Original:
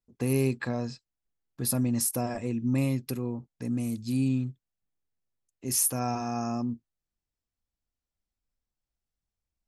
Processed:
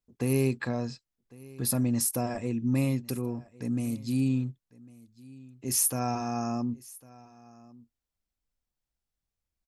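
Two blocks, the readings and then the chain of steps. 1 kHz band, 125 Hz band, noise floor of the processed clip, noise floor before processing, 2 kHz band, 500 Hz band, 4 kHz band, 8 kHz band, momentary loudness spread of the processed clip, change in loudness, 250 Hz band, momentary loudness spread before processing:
0.0 dB, 0.0 dB, under -85 dBFS, under -85 dBFS, 0.0 dB, 0.0 dB, 0.0 dB, 0.0 dB, 13 LU, 0.0 dB, 0.0 dB, 10 LU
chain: echo 1.102 s -22 dB

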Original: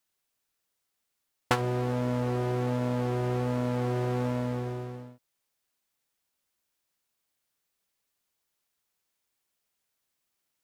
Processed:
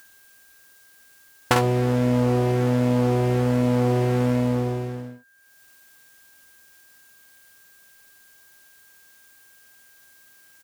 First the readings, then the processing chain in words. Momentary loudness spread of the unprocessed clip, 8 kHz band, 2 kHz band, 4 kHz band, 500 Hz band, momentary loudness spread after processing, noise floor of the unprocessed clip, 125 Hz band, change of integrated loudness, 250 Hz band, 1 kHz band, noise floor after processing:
6 LU, +9.5 dB, +7.0 dB, +7.5 dB, +8.0 dB, 8 LU, -81 dBFS, +8.0 dB, +8.0 dB, +9.5 dB, +6.5 dB, -54 dBFS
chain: high shelf 7100 Hz +5 dB; upward compressor, threshold -47 dBFS; whine 1600 Hz -57 dBFS; on a send: early reflections 49 ms -5.5 dB, 61 ms -14.5 dB; on the sum: gain +5.5 dB

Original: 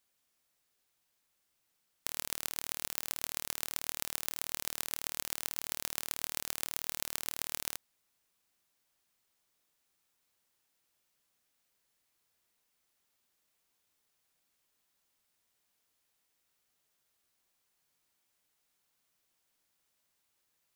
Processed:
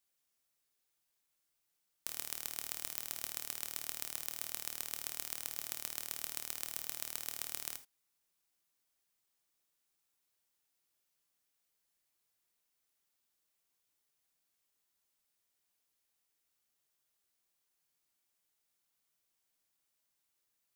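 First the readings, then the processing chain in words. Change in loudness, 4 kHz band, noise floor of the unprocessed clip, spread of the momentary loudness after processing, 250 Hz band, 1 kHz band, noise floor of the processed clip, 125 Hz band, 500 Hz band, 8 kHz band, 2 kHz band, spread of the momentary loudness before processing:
-3.5 dB, -5.0 dB, -79 dBFS, 1 LU, -7.5 dB, -7.0 dB, -82 dBFS, -7.5 dB, -6.5 dB, -3.5 dB, -6.0 dB, 1 LU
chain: high shelf 5000 Hz +4.5 dB; non-linear reverb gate 0.1 s flat, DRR 9 dB; gain -7.5 dB

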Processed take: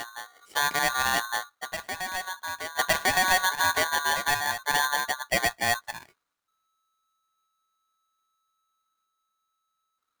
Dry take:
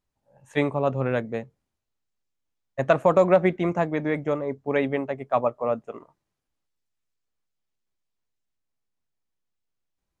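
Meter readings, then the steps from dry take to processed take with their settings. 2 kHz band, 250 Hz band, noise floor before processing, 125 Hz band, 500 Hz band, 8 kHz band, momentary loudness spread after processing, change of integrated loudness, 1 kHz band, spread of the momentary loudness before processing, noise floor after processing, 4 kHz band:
+9.5 dB, -15.0 dB, -83 dBFS, -13.5 dB, -12.5 dB, n/a, 12 LU, -1.5 dB, +3.0 dB, 13 LU, -80 dBFS, +17.0 dB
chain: limiter -14 dBFS, peak gain reduction 7 dB; reverse echo 1.163 s -10 dB; polarity switched at an audio rate 1300 Hz

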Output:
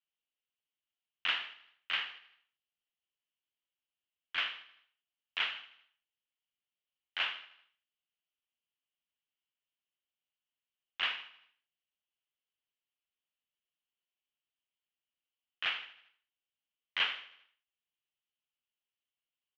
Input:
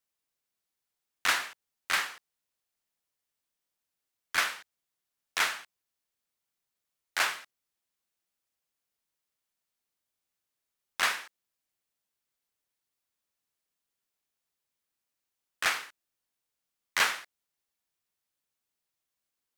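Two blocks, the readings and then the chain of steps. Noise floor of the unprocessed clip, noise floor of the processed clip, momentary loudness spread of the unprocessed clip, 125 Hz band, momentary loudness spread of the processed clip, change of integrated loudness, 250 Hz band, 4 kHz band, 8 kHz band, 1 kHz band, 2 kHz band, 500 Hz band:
under -85 dBFS, under -85 dBFS, 15 LU, n/a, 18 LU, -5.5 dB, under -10 dB, -1.5 dB, under -25 dB, -10.5 dB, -7.0 dB, -11.5 dB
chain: ladder low-pass 3200 Hz, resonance 75%; feedback echo 78 ms, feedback 53%, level -16.5 dB

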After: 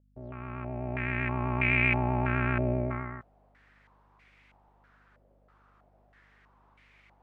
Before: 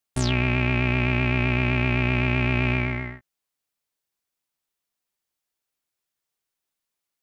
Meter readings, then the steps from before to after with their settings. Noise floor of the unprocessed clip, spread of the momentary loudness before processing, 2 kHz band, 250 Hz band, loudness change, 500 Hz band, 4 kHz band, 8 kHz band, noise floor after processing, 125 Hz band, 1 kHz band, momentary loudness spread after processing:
-85 dBFS, 3 LU, -5.0 dB, -7.5 dB, -6.0 dB, -4.5 dB, -15.0 dB, n/a, -65 dBFS, -8.0 dB, -2.0 dB, 17 LU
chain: opening faded in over 1.85 s; reverse; upward compressor, threshold -30 dBFS; reverse; hum 50 Hz, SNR 32 dB; stepped low-pass 3.1 Hz 580–2200 Hz; gain -6 dB

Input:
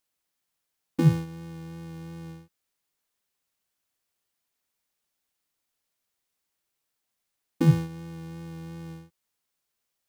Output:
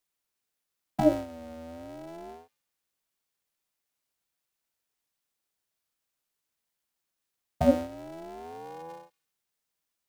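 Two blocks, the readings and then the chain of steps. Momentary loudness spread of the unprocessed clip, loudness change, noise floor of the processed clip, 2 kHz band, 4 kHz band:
19 LU, -2.5 dB, -85 dBFS, -3.0 dB, -3.0 dB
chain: thin delay 0.141 s, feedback 33%, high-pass 1800 Hz, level -19 dB; ring modulator with a swept carrier 540 Hz, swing 25%, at 0.33 Hz

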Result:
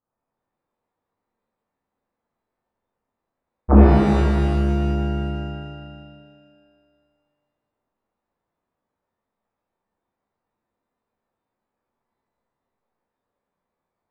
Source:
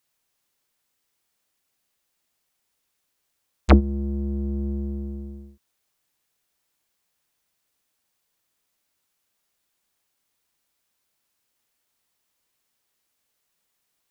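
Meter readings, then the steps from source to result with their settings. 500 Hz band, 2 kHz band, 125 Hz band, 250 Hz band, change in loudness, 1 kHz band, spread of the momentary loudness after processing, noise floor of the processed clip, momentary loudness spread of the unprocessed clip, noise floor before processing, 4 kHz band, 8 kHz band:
+8.0 dB, +4.0 dB, +7.0 dB, +6.5 dB, +6.5 dB, +8.0 dB, 18 LU, -83 dBFS, 19 LU, -76 dBFS, +4.0 dB, n/a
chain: inverse Chebyshev low-pass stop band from 2900 Hz, stop band 50 dB; shimmer reverb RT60 1.8 s, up +12 st, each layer -8 dB, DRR -7.5 dB; gain -2.5 dB

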